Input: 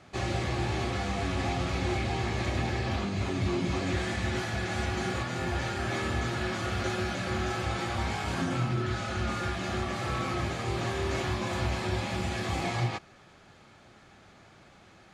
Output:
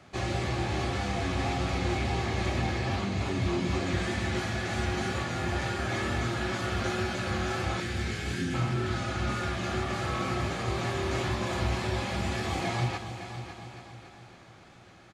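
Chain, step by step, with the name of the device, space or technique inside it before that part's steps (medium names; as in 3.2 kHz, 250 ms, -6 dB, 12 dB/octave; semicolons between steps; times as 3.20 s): 7.80–8.54 s: elliptic band-stop 450–1600 Hz; multi-head tape echo (multi-head delay 278 ms, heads first and second, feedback 50%, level -13 dB; wow and flutter 24 cents); delay 946 ms -21.5 dB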